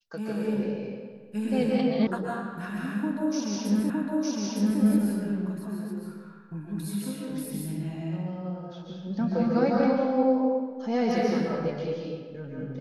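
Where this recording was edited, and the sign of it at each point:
2.07 sound cut off
3.9 repeat of the last 0.91 s

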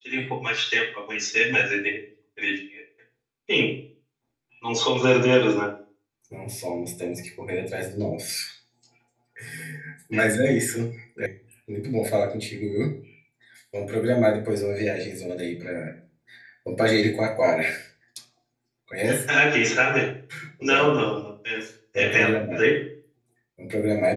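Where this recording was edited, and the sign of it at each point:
11.26 sound cut off

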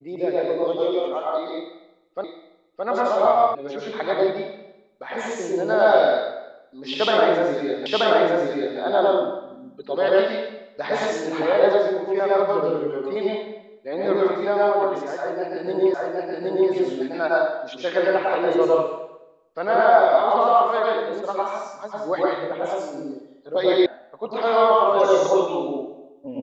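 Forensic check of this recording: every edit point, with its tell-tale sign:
2.24 repeat of the last 0.62 s
3.55 sound cut off
7.86 repeat of the last 0.93 s
15.94 repeat of the last 0.77 s
23.86 sound cut off

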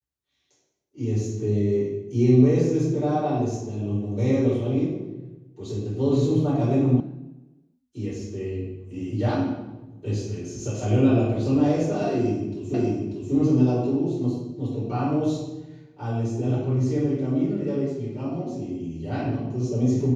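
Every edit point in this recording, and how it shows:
7 sound cut off
12.74 repeat of the last 0.59 s

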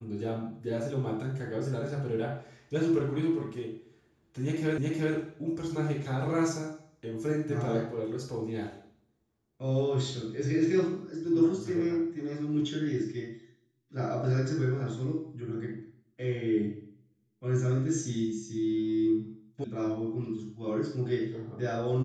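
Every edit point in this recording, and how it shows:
4.78 repeat of the last 0.37 s
19.64 sound cut off

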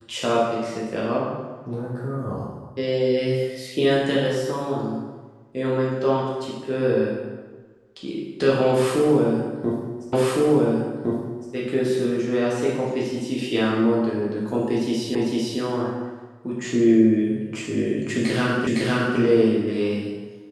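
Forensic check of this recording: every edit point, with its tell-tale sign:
10.13 repeat of the last 1.41 s
15.15 repeat of the last 0.45 s
18.67 repeat of the last 0.51 s

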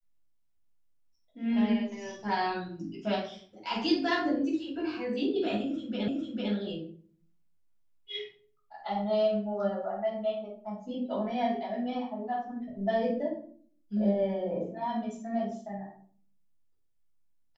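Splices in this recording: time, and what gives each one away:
6.08 repeat of the last 0.45 s

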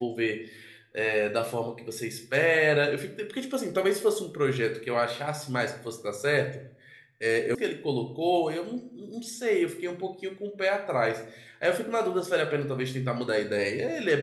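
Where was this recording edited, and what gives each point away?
7.55 sound cut off

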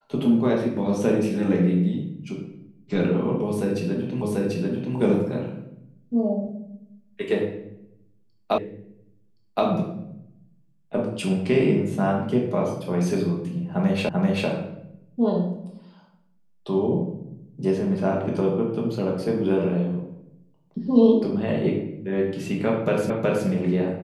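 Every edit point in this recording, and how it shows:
4.22 repeat of the last 0.74 s
8.58 repeat of the last 1.07 s
14.09 repeat of the last 0.39 s
23.1 repeat of the last 0.37 s

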